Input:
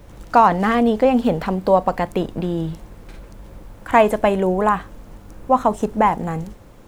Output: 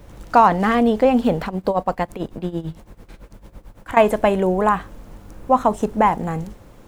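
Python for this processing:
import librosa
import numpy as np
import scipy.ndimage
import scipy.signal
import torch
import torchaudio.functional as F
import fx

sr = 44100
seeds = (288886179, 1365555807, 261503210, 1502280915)

y = fx.tremolo(x, sr, hz=9.0, depth=0.84, at=(1.46, 3.97))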